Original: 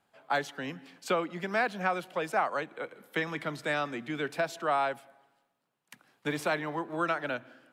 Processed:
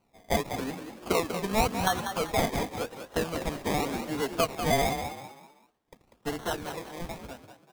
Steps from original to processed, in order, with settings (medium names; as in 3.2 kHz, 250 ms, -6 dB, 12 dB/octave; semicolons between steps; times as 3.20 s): fade out at the end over 2.18 s; band-stop 550 Hz, Q 13; comb 4.3 ms, depth 47%; decimation with a swept rate 25×, swing 60% 0.9 Hz; frequency-shifting echo 193 ms, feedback 35%, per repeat +47 Hz, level -8.5 dB; trim +2 dB